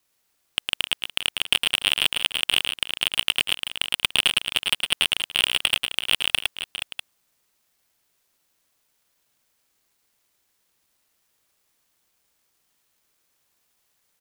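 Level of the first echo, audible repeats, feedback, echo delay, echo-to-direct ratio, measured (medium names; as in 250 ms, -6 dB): -5.0 dB, 4, no regular repeats, 109 ms, -3.5 dB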